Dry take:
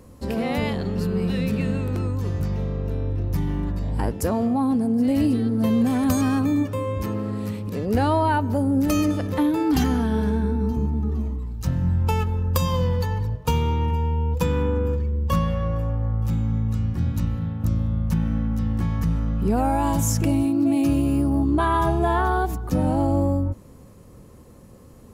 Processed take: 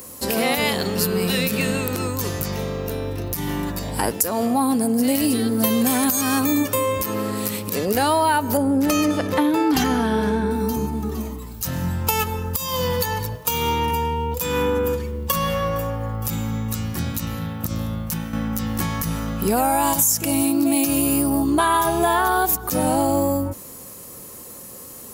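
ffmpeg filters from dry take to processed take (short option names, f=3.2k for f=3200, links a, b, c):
-filter_complex "[0:a]asettb=1/sr,asplit=3[a][b][c];[a]atrim=end=8.574[d];[b]atrim=start=8.57:end=10.51,asetpts=PTS-STARTPTS,afade=t=in:d=0.004:c=qsin,afade=t=out:st=1.936:d=0.004:c=qsin,aemphasis=mode=reproduction:type=75fm[e];[c]atrim=start=10.506[f];[d][e]acrossfade=d=0.004:c1=hsin:c2=qsin[g];[g][f]acrossfade=d=0.004:c1=qsin:c2=hsin,asplit=2[h][i];[h]atrim=end=18.33,asetpts=PTS-STARTPTS,afade=t=out:st=17.91:d=0.42:silence=0.421697[j];[i]atrim=start=18.33,asetpts=PTS-STARTPTS,afade=t=in:d=0.004:c=hsin:silence=0.421697[k];[j][k]concat=n=2:v=0:a=1,aemphasis=mode=production:type=riaa,acompressor=threshold=-24dB:ratio=6,alimiter=level_in=14.5dB:limit=-1dB:release=50:level=0:latency=1,volume=-5.5dB"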